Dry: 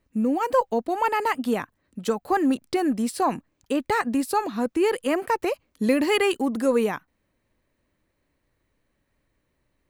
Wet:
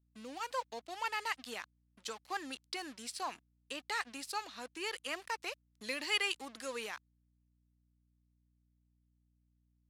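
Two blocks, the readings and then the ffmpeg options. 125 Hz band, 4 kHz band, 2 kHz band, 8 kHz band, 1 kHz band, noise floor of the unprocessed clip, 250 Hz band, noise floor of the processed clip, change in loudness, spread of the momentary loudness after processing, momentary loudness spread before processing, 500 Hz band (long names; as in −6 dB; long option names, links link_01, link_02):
below −25 dB, −4.0 dB, −8.0 dB, −7.5 dB, −15.5 dB, −74 dBFS, −26.5 dB, −76 dBFS, −15.0 dB, 11 LU, 7 LU, −22.0 dB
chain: -af "aeval=exprs='sgn(val(0))*max(abs(val(0))-0.00794,0)':channel_layout=same,bandpass=frequency=4500:width_type=q:width=0.97:csg=0,aeval=exprs='val(0)+0.000251*(sin(2*PI*60*n/s)+sin(2*PI*2*60*n/s)/2+sin(2*PI*3*60*n/s)/3+sin(2*PI*4*60*n/s)/4+sin(2*PI*5*60*n/s)/5)':channel_layout=same,volume=-1.5dB"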